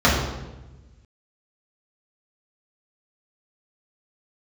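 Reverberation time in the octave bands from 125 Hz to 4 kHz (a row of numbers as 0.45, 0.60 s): 1.8, 1.5, 1.2, 1.0, 0.90, 0.80 s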